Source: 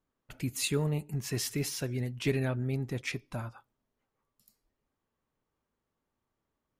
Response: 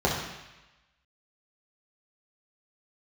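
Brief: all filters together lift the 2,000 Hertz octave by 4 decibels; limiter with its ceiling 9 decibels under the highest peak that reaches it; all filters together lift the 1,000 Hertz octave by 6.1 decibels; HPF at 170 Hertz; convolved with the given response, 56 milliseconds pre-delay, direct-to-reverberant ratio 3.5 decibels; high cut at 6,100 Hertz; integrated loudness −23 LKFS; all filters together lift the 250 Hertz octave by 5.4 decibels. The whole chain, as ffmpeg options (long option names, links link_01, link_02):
-filter_complex "[0:a]highpass=170,lowpass=6100,equalizer=frequency=250:width_type=o:gain=7.5,equalizer=frequency=1000:width_type=o:gain=6.5,equalizer=frequency=2000:width_type=o:gain=3.5,alimiter=limit=-21.5dB:level=0:latency=1,asplit=2[link_01][link_02];[1:a]atrim=start_sample=2205,adelay=56[link_03];[link_02][link_03]afir=irnorm=-1:irlink=0,volume=-18.5dB[link_04];[link_01][link_04]amix=inputs=2:normalize=0,volume=7.5dB"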